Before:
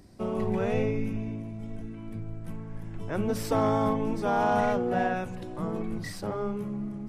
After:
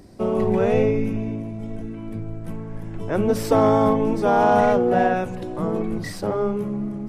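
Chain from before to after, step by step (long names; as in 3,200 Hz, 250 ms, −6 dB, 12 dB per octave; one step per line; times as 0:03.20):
parametric band 460 Hz +5 dB 1.8 octaves
level +5 dB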